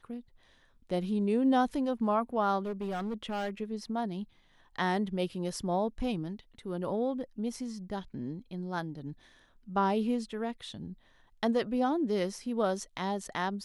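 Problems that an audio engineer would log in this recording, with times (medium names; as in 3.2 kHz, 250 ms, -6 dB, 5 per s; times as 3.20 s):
2.65–3.50 s: clipped -30.5 dBFS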